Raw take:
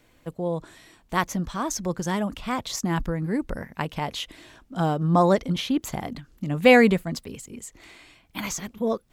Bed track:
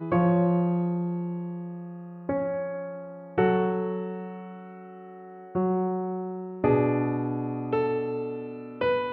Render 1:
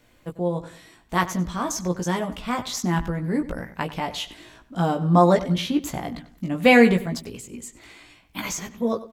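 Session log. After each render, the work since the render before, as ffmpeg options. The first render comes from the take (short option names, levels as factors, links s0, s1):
-filter_complex "[0:a]asplit=2[s0][s1];[s1]adelay=17,volume=0.596[s2];[s0][s2]amix=inputs=2:normalize=0,asplit=2[s3][s4];[s4]adelay=95,lowpass=f=4700:p=1,volume=0.178,asplit=2[s5][s6];[s6]adelay=95,lowpass=f=4700:p=1,volume=0.37,asplit=2[s7][s8];[s8]adelay=95,lowpass=f=4700:p=1,volume=0.37[s9];[s3][s5][s7][s9]amix=inputs=4:normalize=0"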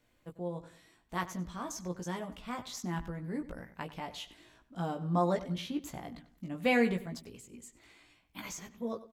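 -af "volume=0.224"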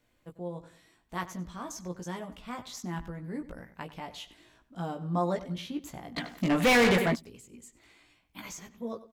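-filter_complex "[0:a]asplit=3[s0][s1][s2];[s0]afade=t=out:st=6.16:d=0.02[s3];[s1]asplit=2[s4][s5];[s5]highpass=f=720:p=1,volume=44.7,asoftclip=type=tanh:threshold=0.178[s6];[s4][s6]amix=inputs=2:normalize=0,lowpass=f=4700:p=1,volume=0.501,afade=t=in:st=6.16:d=0.02,afade=t=out:st=7.14:d=0.02[s7];[s2]afade=t=in:st=7.14:d=0.02[s8];[s3][s7][s8]amix=inputs=3:normalize=0"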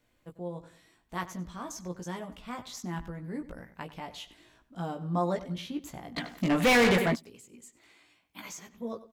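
-filter_complex "[0:a]asettb=1/sr,asplit=3[s0][s1][s2];[s0]atrim=end=7.174[s3];[s1]atrim=start=7.17:end=8.73,asetpts=PTS-STARTPTS,afade=t=in:d=0.004:c=qsin,afade=t=out:st=1.556:d=0.004:c=qsin,highpass=f=210:p=1[s4];[s2]atrim=start=8.726[s5];[s3][s4]acrossfade=d=0.004:c1=hsin:c2=qsin[s6];[s6][s5]acrossfade=d=0.004:c1=qsin:c2=hsin"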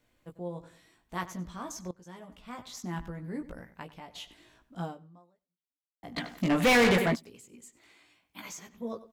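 -filter_complex "[0:a]asplit=4[s0][s1][s2][s3];[s0]atrim=end=1.91,asetpts=PTS-STARTPTS,afade=t=out:st=1.906:d=0.004:c=hsin:silence=0.133352[s4];[s1]atrim=start=1.91:end=4.15,asetpts=PTS-STARTPTS,afade=t=in:d=1.01:silence=0.133352,afade=t=out:st=1.66:d=0.58:silence=0.375837[s5];[s2]atrim=start=4.15:end=6.03,asetpts=PTS-STARTPTS,afade=t=in:d=0.004:c=hsin:silence=0.375837,afade=t=out:st=0.69:d=1.19:c=exp[s6];[s3]atrim=start=6.03,asetpts=PTS-STARTPTS,afade=t=in:d=0.004:c=hsin[s7];[s4][s5][s6][s7]concat=n=4:v=0:a=1"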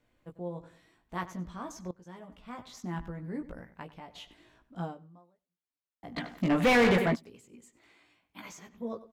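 -af "highshelf=f=3800:g=-9"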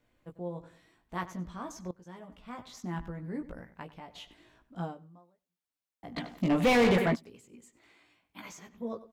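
-filter_complex "[0:a]asettb=1/sr,asplit=3[s0][s1][s2];[s0]atrim=end=6.184[s3];[s1]atrim=start=6.18:end=6.97,asetpts=PTS-STARTPTS,afade=t=in:d=0.004:c=qsin,afade=t=out:st=0.786:d=0.004:c=qsin,equalizer=f=1600:t=o:w=0.77:g=-6[s4];[s2]atrim=start=6.966[s5];[s3][s4]acrossfade=d=0.004:c1=hsin:c2=qsin[s6];[s6][s5]acrossfade=d=0.004:c1=qsin:c2=hsin"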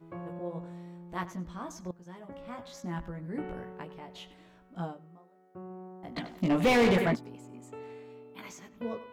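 -filter_complex "[1:a]volume=0.112[s0];[0:a][s0]amix=inputs=2:normalize=0"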